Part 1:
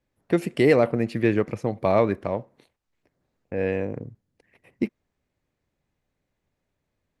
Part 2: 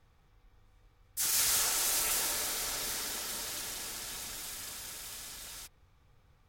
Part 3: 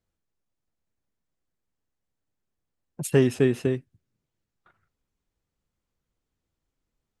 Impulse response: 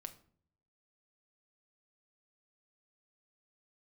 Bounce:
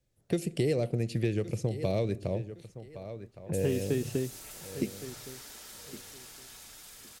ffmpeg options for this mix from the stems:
-filter_complex "[0:a]equalizer=f=125:t=o:w=1:g=4,equalizer=f=250:t=o:w=1:g=-8,equalizer=f=1000:t=o:w=1:g=-11,equalizer=f=2000:t=o:w=1:g=-6,equalizer=f=8000:t=o:w=1:g=5,volume=1,asplit=3[s0][s1][s2];[s1]volume=0.501[s3];[s2]volume=0.15[s4];[1:a]acrossover=split=440[s5][s6];[s6]acompressor=threshold=0.0178:ratio=6[s7];[s5][s7]amix=inputs=2:normalize=0,adelay=2400,volume=0.398[s8];[2:a]adelay=500,volume=0.668,asplit=2[s9][s10];[s10]volume=0.112[s11];[3:a]atrim=start_sample=2205[s12];[s3][s12]afir=irnorm=-1:irlink=0[s13];[s4][s11]amix=inputs=2:normalize=0,aecho=0:1:1114|2228|3342:1|0.2|0.04[s14];[s0][s8][s9][s13][s14]amix=inputs=5:normalize=0,acrossover=split=660|2400[s15][s16][s17];[s15]acompressor=threshold=0.0501:ratio=4[s18];[s16]acompressor=threshold=0.00251:ratio=4[s19];[s17]acompressor=threshold=0.00794:ratio=4[s20];[s18][s19][s20]amix=inputs=3:normalize=0"

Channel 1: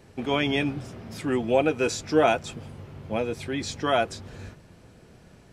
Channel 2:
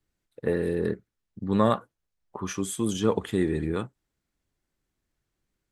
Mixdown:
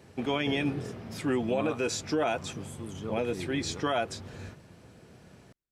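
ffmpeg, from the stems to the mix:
-filter_complex "[0:a]highpass=70,alimiter=limit=0.119:level=0:latency=1:release=70,volume=0.891[s0];[1:a]volume=0.188[s1];[s0][s1]amix=inputs=2:normalize=0"

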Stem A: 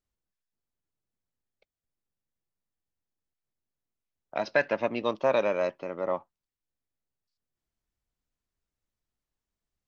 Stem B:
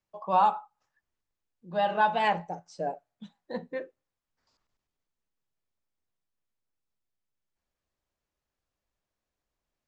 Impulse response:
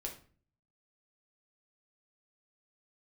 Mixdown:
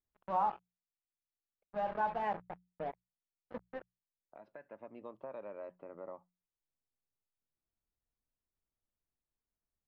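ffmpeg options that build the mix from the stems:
-filter_complex "[0:a]alimiter=limit=0.133:level=0:latency=1:release=367,acompressor=threshold=0.00562:ratio=2,volume=0.501[s0];[1:a]acrusher=bits=4:mix=0:aa=0.5,volume=0.355,asplit=2[s1][s2];[s2]apad=whole_len=435459[s3];[s0][s3]sidechaincompress=threshold=0.00282:ratio=3:attack=7.9:release=1270[s4];[s4][s1]amix=inputs=2:normalize=0,lowpass=1400,bandreject=f=60:t=h:w=6,bandreject=f=120:t=h:w=6,bandreject=f=180:t=h:w=6"

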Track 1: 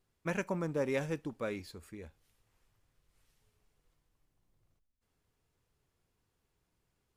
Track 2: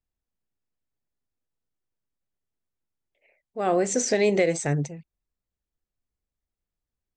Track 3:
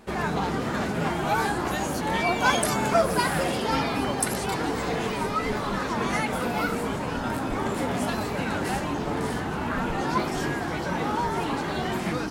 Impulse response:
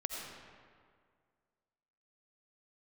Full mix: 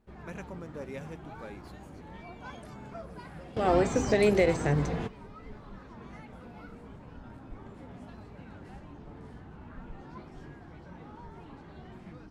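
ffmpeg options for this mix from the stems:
-filter_complex "[0:a]volume=0.376[s0];[1:a]deesser=0.85,volume=0.794,asplit=2[s1][s2];[2:a]aemphasis=mode=reproduction:type=bsi,volume=0.335[s3];[s2]apad=whole_len=542630[s4];[s3][s4]sidechaingate=range=0.2:threshold=0.00316:ratio=16:detection=peak[s5];[s0][s1][s5]amix=inputs=3:normalize=0"

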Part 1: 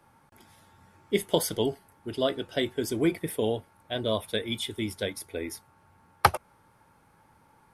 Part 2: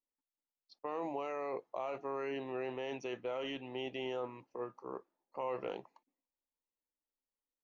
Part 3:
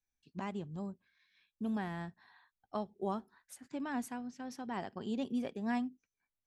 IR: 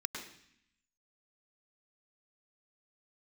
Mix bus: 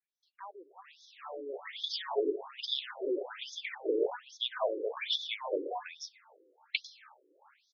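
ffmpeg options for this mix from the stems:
-filter_complex "[0:a]adelay=500,volume=0.944,asplit=2[s0][s1];[s1]volume=0.316[s2];[1:a]equalizer=f=520:t=o:w=0.39:g=-5,volume=0.501,asplit=2[s3][s4];[s4]volume=0.398[s5];[2:a]highpass=f=1000:p=1,volume=1,asplit=4[s6][s7][s8][s9];[s7]volume=0.178[s10];[s8]volume=0.0794[s11];[s9]apad=whole_len=362998[s12];[s0][s12]sidechaincompress=threshold=0.00178:ratio=5:attack=16:release=390[s13];[3:a]atrim=start_sample=2205[s14];[s2][s10]amix=inputs=2:normalize=0[s15];[s15][s14]afir=irnorm=-1:irlink=0[s16];[s5][s11]amix=inputs=2:normalize=0,aecho=0:1:320|640|960|1280|1600|1920|2240:1|0.48|0.23|0.111|0.0531|0.0255|0.0122[s17];[s13][s3][s6][s16][s17]amix=inputs=5:normalize=0,dynaudnorm=f=200:g=7:m=2.51,afftfilt=real='re*between(b*sr/1024,370*pow(4800/370,0.5+0.5*sin(2*PI*1.2*pts/sr))/1.41,370*pow(4800/370,0.5+0.5*sin(2*PI*1.2*pts/sr))*1.41)':imag='im*between(b*sr/1024,370*pow(4800/370,0.5+0.5*sin(2*PI*1.2*pts/sr))/1.41,370*pow(4800/370,0.5+0.5*sin(2*PI*1.2*pts/sr))*1.41)':win_size=1024:overlap=0.75"

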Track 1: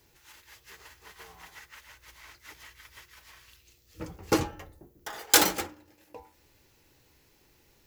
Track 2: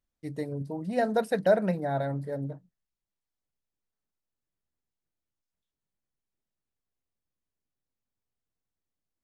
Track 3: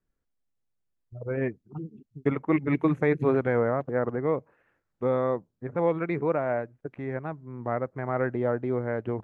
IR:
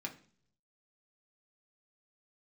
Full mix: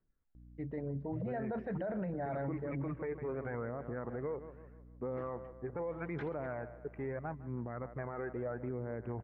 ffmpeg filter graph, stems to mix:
-filter_complex "[0:a]adelay=850,volume=0.126[s0];[1:a]aeval=exprs='val(0)+0.00282*(sin(2*PI*60*n/s)+sin(2*PI*2*60*n/s)/2+sin(2*PI*3*60*n/s)/3+sin(2*PI*4*60*n/s)/4+sin(2*PI*5*60*n/s)/5)':c=same,adelay=350,volume=0.708,asplit=2[s1][s2];[s2]volume=0.0631[s3];[2:a]volume=0.631,asplit=3[s4][s5][s6];[s5]volume=0.0891[s7];[s6]apad=whole_len=384410[s8];[s0][s8]sidechaingate=range=0.0224:threshold=0.00178:ratio=16:detection=peak[s9];[s9][s4]amix=inputs=2:normalize=0,aphaser=in_gain=1:out_gain=1:delay=2.6:decay=0.43:speed=0.79:type=triangular,acompressor=threshold=0.0224:ratio=6,volume=1[s10];[s3][s7]amix=inputs=2:normalize=0,aecho=0:1:154|308|462|616|770|924:1|0.44|0.194|0.0852|0.0375|0.0165[s11];[s1][s10][s11]amix=inputs=3:normalize=0,lowpass=f=2200:w=0.5412,lowpass=f=2200:w=1.3066,alimiter=level_in=2.24:limit=0.0631:level=0:latency=1:release=15,volume=0.447"

